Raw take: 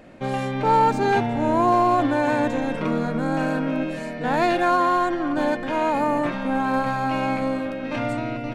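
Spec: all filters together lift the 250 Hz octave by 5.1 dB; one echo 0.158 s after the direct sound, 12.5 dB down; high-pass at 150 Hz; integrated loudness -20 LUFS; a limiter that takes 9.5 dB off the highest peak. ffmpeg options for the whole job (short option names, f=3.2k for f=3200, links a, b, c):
-af "highpass=150,equalizer=f=250:t=o:g=6.5,alimiter=limit=-16dB:level=0:latency=1,aecho=1:1:158:0.237,volume=4.5dB"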